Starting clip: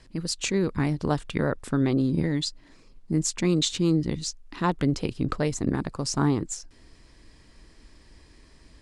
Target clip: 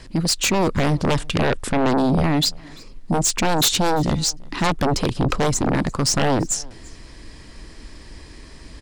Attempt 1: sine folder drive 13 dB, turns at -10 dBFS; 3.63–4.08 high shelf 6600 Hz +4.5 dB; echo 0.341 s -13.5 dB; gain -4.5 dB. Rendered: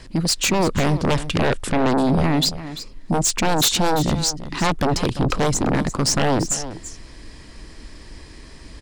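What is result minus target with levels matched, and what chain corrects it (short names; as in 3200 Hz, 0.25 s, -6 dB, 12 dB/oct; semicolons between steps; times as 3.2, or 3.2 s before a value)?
echo-to-direct +12 dB
sine folder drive 13 dB, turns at -10 dBFS; 3.63–4.08 high shelf 6600 Hz +4.5 dB; echo 0.341 s -25.5 dB; gain -4.5 dB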